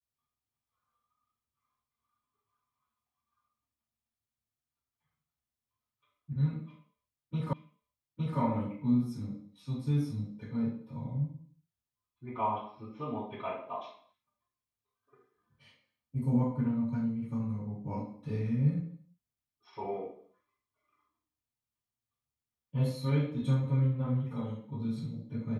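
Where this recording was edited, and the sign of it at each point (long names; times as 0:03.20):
0:07.53: the same again, the last 0.86 s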